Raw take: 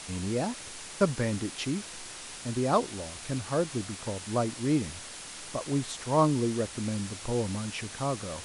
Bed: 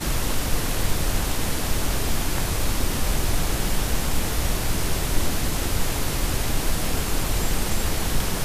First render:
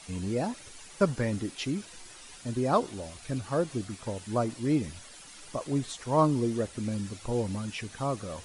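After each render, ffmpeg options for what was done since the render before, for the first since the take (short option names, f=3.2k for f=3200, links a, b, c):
-af "afftdn=nr=10:nf=-43"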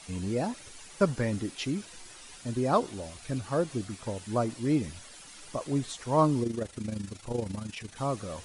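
-filter_complex "[0:a]asettb=1/sr,asplit=3[a][b][c];[a]atrim=end=6.434[d];[b]atrim=start=6.43:end=7.96,asetpts=PTS-STARTPTS,afade=t=in:d=0.004:c=qsin,afade=t=out:st=1.526:d=0.004:c=qsin,tremolo=f=26:d=0.667[e];[c]atrim=start=7.956[f];[d][e]acrossfade=d=0.004:c1=hsin:c2=qsin[g];[g][f]acrossfade=d=0.004:c1=qsin:c2=hsin"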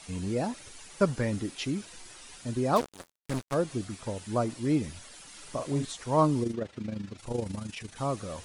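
-filter_complex "[0:a]asplit=3[a][b][c];[a]afade=t=out:st=2.75:d=0.02[d];[b]acrusher=bits=4:mix=0:aa=0.5,afade=t=in:st=2.75:d=0.02,afade=t=out:st=3.53:d=0.02[e];[c]afade=t=in:st=3.53:d=0.02[f];[d][e][f]amix=inputs=3:normalize=0,asettb=1/sr,asplit=3[g][h][i];[g]atrim=end=5.304[j];[h]atrim=start=5.3:end=5.85,asetpts=PTS-STARTPTS,afade=t=in:d=0.004:c=qsin,afade=t=out:st=0.546:d=0.004:c=qsin,asplit=2[k][l];[l]adelay=41,volume=-6dB[m];[k][m]amix=inputs=2:normalize=0,atrim=end_sample=24255[n];[i]atrim=start=5.846[o];[j][n]acrossfade=d=0.004:c1=hsin:c2=qsin[p];[p][o]acrossfade=d=0.004:c1=qsin:c2=hsin,asettb=1/sr,asplit=3[q][r][s];[q]atrim=end=6.534[t];[r]atrim=start=6.53:end=7.18,asetpts=PTS-STARTPTS,afade=t=in:d=0.004:c=qsin,afade=t=out:st=0.646:d=0.004:c=qsin,highpass=100,lowpass=3.9k[u];[s]atrim=start=7.176[v];[t][u]acrossfade=d=0.004:c1=hsin:c2=qsin[w];[w][v]acrossfade=d=0.004:c1=qsin:c2=hsin"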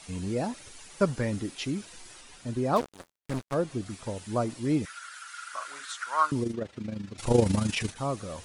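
-filter_complex "[0:a]asettb=1/sr,asplit=3[a][b][c];[a]atrim=end=2.214[d];[b]atrim=start=2.21:end=3.86,asetpts=PTS-STARTPTS,afade=t=in:d=0.004:c=qsin,afade=t=out:st=1.646:d=0.004:c=qsin,highshelf=f=3.7k:g=-5[e];[c]atrim=start=3.856[f];[d][e]acrossfade=d=0.004:c1=hsin:c2=qsin[g];[g][f]acrossfade=d=0.004:c1=qsin:c2=hsin,asettb=1/sr,asplit=3[h][i][j];[h]atrim=end=4.854[k];[i]atrim=start=4.85:end=6.32,asetpts=PTS-STARTPTS,afade=t=in:d=0.004:c=qsin,afade=t=out:st=1.466:d=0.004:c=qsin,highpass=f=1.4k:t=q:w=11[l];[j]atrim=start=6.316[m];[k][l]acrossfade=d=0.004:c1=hsin:c2=qsin[n];[n][m]acrossfade=d=0.004:c1=qsin:c2=hsin,asplit=3[o][p][q];[o]atrim=end=7.182[r];[p]atrim=start=7.178:end=7.922,asetpts=PTS-STARTPTS,volume=10.5dB[s];[q]atrim=start=7.918[t];[r][s]acrossfade=d=0.004:c1=hsin:c2=hsin[u];[u][t]acrossfade=d=0.004:c1=hsin:c2=hsin"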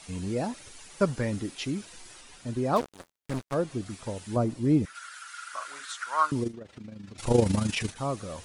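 -filter_complex "[0:a]asettb=1/sr,asplit=3[a][b][c];[a]atrim=end=4.364[d];[b]atrim=start=4.36:end=4.95,asetpts=PTS-STARTPTS,afade=t=in:d=0.004:c=qsin,afade=t=out:st=0.586:d=0.004:c=qsin,tiltshelf=f=640:g=5.5[e];[c]atrim=start=4.946[f];[d][e]acrossfade=d=0.004:c1=hsin:c2=qsin[g];[g][f]acrossfade=d=0.004:c1=qsin:c2=hsin,asettb=1/sr,asplit=3[h][i][j];[h]atrim=end=6.484[k];[i]atrim=start=6.48:end=7.2,asetpts=PTS-STARTPTS,afade=t=in:d=0.004:c=qsin,afade=t=out:st=0.716:d=0.004:c=qsin,acompressor=threshold=-39dB:ratio=5:attack=3.2:release=140:knee=1:detection=peak[l];[j]atrim=start=7.196[m];[k][l]acrossfade=d=0.004:c1=hsin:c2=qsin[n];[n][m]acrossfade=d=0.004:c1=qsin:c2=hsin"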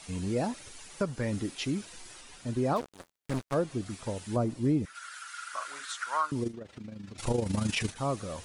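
-af "alimiter=limit=-18.5dB:level=0:latency=1:release=363"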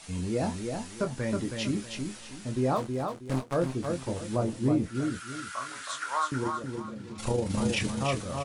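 -filter_complex "[0:a]asplit=2[a][b];[b]adelay=23,volume=-7dB[c];[a][c]amix=inputs=2:normalize=0,aecho=1:1:320|640|960|1280:0.562|0.163|0.0473|0.0137"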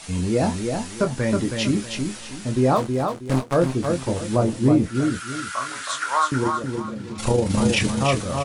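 -af "volume=8.5dB"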